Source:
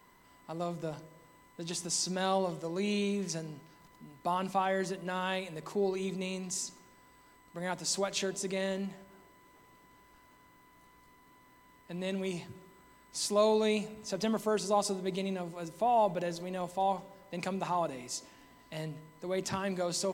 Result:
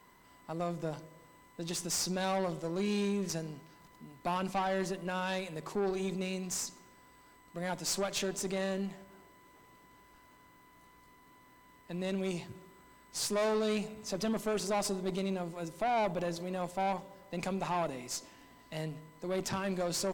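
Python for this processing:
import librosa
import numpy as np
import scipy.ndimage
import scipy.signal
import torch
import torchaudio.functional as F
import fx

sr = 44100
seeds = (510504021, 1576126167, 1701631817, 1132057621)

y = fx.tube_stage(x, sr, drive_db=30.0, bias=0.55)
y = y * librosa.db_to_amplitude(3.0)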